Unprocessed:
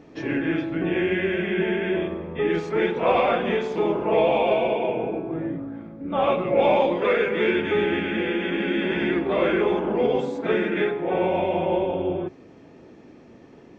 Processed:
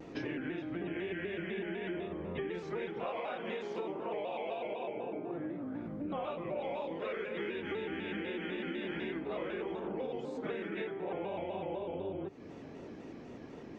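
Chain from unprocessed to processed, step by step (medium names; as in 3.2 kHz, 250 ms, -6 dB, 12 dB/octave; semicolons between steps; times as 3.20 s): 3.06–5.75 s: high-pass 260 Hz 6 dB/octave; compression 8:1, threshold -36 dBFS, peak gain reduction 20.5 dB; vibrato with a chosen wave square 4 Hz, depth 100 cents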